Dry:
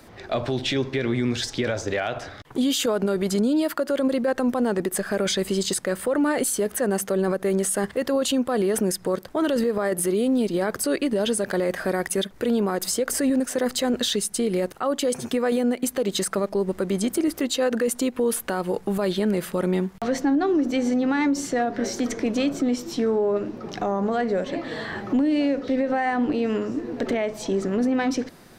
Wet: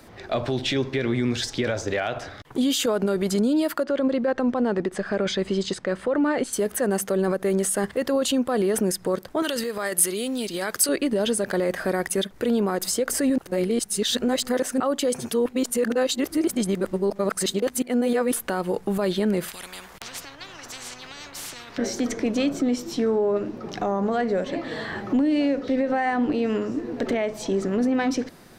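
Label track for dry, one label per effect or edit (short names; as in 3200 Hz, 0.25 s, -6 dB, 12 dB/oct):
3.830000	6.530000	air absorption 120 m
9.420000	10.890000	tilt shelf lows -8 dB, about 1300 Hz
13.380000	14.800000	reverse
15.320000	18.330000	reverse
19.480000	21.780000	spectral compressor 10:1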